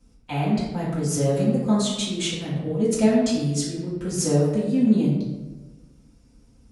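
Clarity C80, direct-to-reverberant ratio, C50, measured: 4.0 dB, -9.5 dB, 1.5 dB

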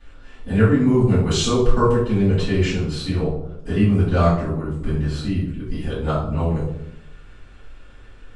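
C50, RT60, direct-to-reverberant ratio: 3.0 dB, 0.75 s, -14.5 dB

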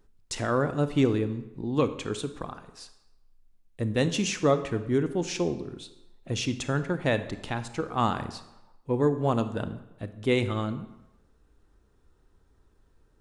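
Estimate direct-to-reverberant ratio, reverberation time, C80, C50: 10.5 dB, 1.0 s, 14.5 dB, 12.0 dB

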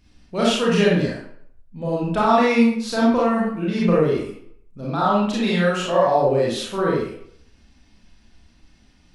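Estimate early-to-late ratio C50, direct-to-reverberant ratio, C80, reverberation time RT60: 0.5 dB, -6.0 dB, 5.0 dB, 0.65 s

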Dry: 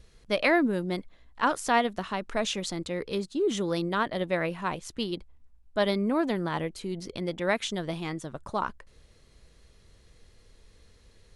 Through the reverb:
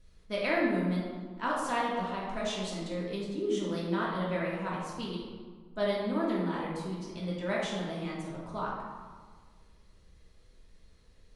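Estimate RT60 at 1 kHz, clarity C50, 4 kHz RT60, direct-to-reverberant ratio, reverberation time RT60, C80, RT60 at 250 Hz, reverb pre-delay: 1.6 s, 0.0 dB, 0.95 s, -6.0 dB, 1.6 s, 2.5 dB, 1.9 s, 3 ms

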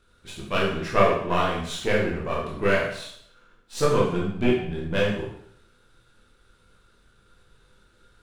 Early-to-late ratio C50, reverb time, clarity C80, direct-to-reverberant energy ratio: 3.0 dB, 0.65 s, 6.5 dB, -5.5 dB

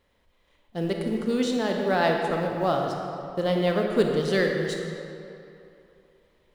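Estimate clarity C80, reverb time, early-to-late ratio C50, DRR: 3.5 dB, 2.8 s, 2.5 dB, 1.5 dB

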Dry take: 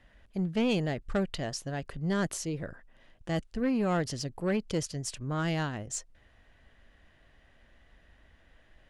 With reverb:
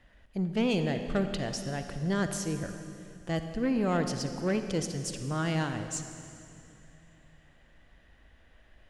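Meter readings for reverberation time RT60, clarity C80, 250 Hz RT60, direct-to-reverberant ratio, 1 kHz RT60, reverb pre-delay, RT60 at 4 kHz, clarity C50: 2.7 s, 8.5 dB, 3.0 s, 7.5 dB, 2.5 s, 39 ms, 2.4 s, 8.0 dB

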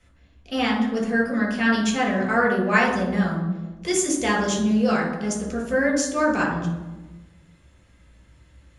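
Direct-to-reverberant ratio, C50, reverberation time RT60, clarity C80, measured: -2.0 dB, 4.5 dB, 1.2 s, 8.0 dB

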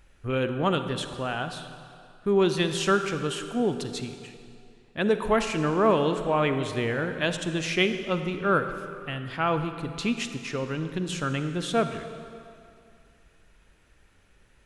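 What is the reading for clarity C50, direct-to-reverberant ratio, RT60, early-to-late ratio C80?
8.5 dB, 8.0 dB, 2.4 s, 9.5 dB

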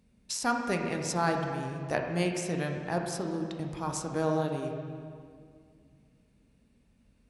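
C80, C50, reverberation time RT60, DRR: 5.0 dB, 3.5 dB, 2.1 s, 2.0 dB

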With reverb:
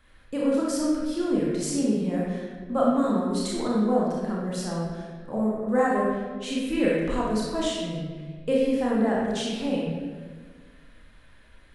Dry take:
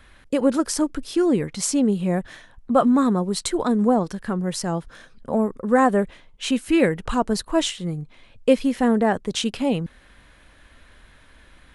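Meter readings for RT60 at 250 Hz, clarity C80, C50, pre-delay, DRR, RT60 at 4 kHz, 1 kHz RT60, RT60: 1.9 s, 1.5 dB, -1.5 dB, 28 ms, -5.0 dB, 1.0 s, 1.3 s, 1.5 s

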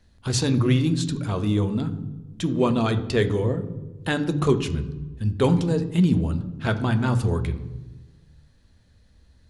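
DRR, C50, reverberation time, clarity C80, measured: 9.0 dB, 13.5 dB, 1.2 s, 15.5 dB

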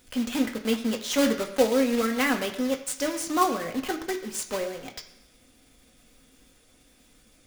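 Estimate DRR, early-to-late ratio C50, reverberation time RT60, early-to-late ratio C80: 3.0 dB, 10.5 dB, 1.0 s, 12.5 dB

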